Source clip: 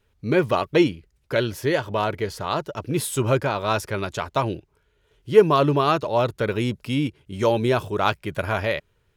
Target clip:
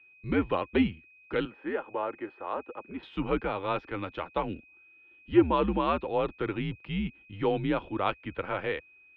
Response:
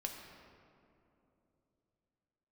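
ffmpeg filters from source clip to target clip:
-filter_complex "[0:a]asettb=1/sr,asplit=3[s0][s1][s2];[s0]atrim=end=1.454[s3];[s1]atrim=start=1.45:end=3.03,asetpts=PTS-STARTPTS,afade=t=in:d=0.004:c=qsin,afade=t=out:st=1.576:d=0.004:c=qsin,acrossover=split=370 2100:gain=0.0708 1 0.112[s4][s5][s6];[s4][s5][s6]amix=inputs=3:normalize=0[s7];[s2]atrim=start=3.026[s8];[s3][s7]acrossfade=d=0.004:c1=hsin:c2=qsin[s9];[s9][s8]acrossfade=d=0.004:c1=qsin:c2=hsin,aeval=exprs='val(0)+0.00398*sin(2*PI*2600*n/s)':c=same,highpass=f=160:t=q:w=0.5412,highpass=f=160:t=q:w=1.307,lowpass=f=3400:t=q:w=0.5176,lowpass=f=3400:t=q:w=0.7071,lowpass=f=3400:t=q:w=1.932,afreqshift=-88,volume=0.447"

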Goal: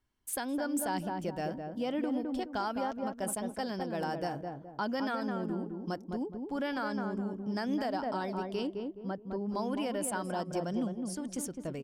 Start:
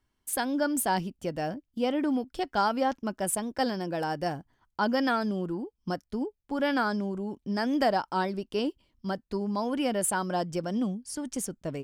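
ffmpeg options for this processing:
-filter_complex "[0:a]asplit=3[s0][s1][s2];[s0]afade=t=out:st=8.66:d=0.02[s3];[s1]lowpass=f=1300:p=1,afade=t=in:st=8.66:d=0.02,afade=t=out:st=9.48:d=0.02[s4];[s2]afade=t=in:st=9.48:d=0.02[s5];[s3][s4][s5]amix=inputs=3:normalize=0,asplit=2[s6][s7];[s7]adelay=210,lowpass=f=970:p=1,volume=0.631,asplit=2[s8][s9];[s9]adelay=210,lowpass=f=970:p=1,volume=0.39,asplit=2[s10][s11];[s11]adelay=210,lowpass=f=970:p=1,volume=0.39,asplit=2[s12][s13];[s13]adelay=210,lowpass=f=970:p=1,volume=0.39,asplit=2[s14][s15];[s15]adelay=210,lowpass=f=970:p=1,volume=0.39[s16];[s6][s8][s10][s12][s14][s16]amix=inputs=6:normalize=0,alimiter=limit=0.106:level=0:latency=1:release=124,volume=0.596"

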